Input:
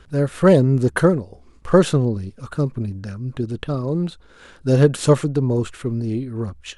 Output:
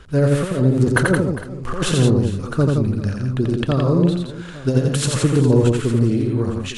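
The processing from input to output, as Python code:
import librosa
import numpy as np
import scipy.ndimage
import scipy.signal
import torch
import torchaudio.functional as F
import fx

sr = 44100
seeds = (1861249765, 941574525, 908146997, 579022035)

p1 = fx.over_compress(x, sr, threshold_db=-17.0, ratio=-0.5)
p2 = p1 + fx.echo_multitap(p1, sr, ms=(86, 170, 404, 457, 858), db=(-3.0, -5.5, -17.0, -20.0, -17.0), dry=0)
y = p2 * librosa.db_to_amplitude(1.5)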